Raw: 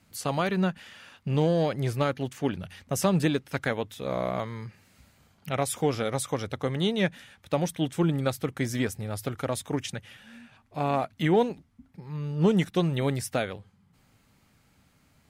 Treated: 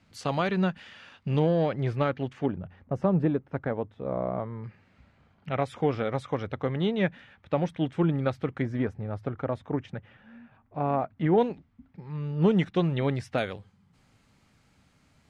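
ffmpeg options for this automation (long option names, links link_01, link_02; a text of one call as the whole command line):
ffmpeg -i in.wav -af "asetnsamples=nb_out_samples=441:pad=0,asendcmd='1.39 lowpass f 2700;2.46 lowpass f 1000;4.64 lowpass f 2400;8.62 lowpass f 1400;11.38 lowpass f 3200;13.38 lowpass f 8200',lowpass=4800" out.wav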